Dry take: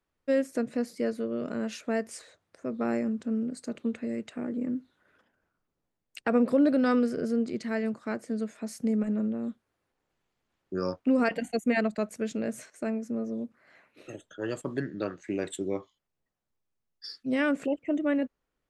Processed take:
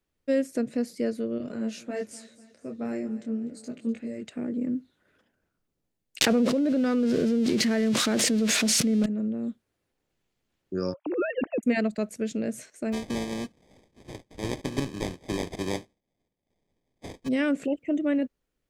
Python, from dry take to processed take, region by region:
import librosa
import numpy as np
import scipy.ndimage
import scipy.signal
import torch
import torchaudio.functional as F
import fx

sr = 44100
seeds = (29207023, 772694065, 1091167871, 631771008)

y = fx.chain(x, sr, fx.echo_feedback(ms=248, feedback_pct=50, wet_db=-17.0),
    fx.detune_double(cents=12), at=(1.38, 4.25))
y = fx.chain(y, sr, fx.crossing_spikes(level_db=-27.0),
    fx.lowpass(hz=4000.0, slope=12),
    fx.env_flatten(amount_pct=100), at=(6.21, 9.06))
y = fx.chain(y, sr, fx.sine_speech(),
    fx.over_compress(threshold_db=-28.0, ratio=-1.0), at=(10.94, 11.63))
y = fx.spec_flatten(y, sr, power=0.53, at=(12.92, 17.27), fade=0.02)
y = fx.sample_hold(y, sr, seeds[0], rate_hz=1400.0, jitter_pct=0, at=(12.92, 17.27), fade=0.02)
y = fx.lowpass(y, sr, hz=8500.0, slope=12, at=(12.92, 17.27), fade=0.02)
y = fx.peak_eq(y, sr, hz=1100.0, db=-7.5, octaves=1.6)
y = fx.rider(y, sr, range_db=3, speed_s=0.5)